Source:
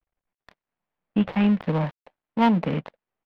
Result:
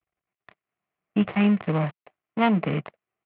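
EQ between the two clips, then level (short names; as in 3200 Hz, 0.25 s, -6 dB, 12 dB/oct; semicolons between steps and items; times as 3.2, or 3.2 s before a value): speaker cabinet 120–2800 Hz, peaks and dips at 170 Hz -5 dB, 240 Hz -7 dB, 520 Hz -9 dB, 900 Hz -7 dB, 1600 Hz -6 dB; bell 280 Hz -3.5 dB 0.45 oct; notch 890 Hz, Q 12; +5.5 dB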